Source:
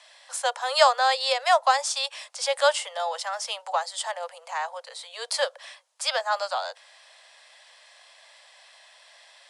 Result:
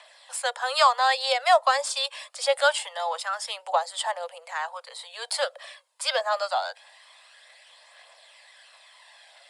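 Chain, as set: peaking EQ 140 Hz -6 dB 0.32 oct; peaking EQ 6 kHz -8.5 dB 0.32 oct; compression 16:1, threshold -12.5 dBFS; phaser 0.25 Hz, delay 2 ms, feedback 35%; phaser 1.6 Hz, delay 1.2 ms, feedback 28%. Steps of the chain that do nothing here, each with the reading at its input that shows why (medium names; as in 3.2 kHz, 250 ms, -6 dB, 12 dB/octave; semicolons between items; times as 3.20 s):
peaking EQ 140 Hz: input has nothing below 430 Hz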